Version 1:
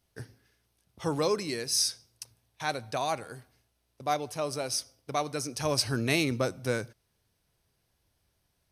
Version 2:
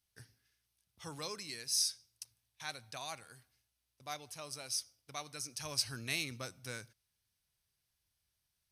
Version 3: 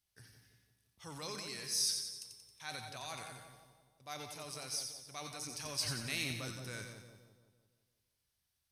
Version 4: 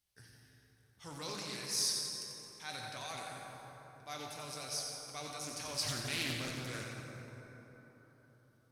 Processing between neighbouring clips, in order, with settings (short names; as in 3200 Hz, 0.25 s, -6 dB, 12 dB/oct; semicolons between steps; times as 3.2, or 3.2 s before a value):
passive tone stack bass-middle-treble 5-5-5; gain +1 dB
transient shaper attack -2 dB, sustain +8 dB; resonator 190 Hz, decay 1.4 s, mix 70%; split-band echo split 1000 Hz, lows 0.169 s, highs 90 ms, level -6 dB; gain +8 dB
plate-style reverb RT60 4.5 s, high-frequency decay 0.4×, DRR 1.5 dB; Doppler distortion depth 0.41 ms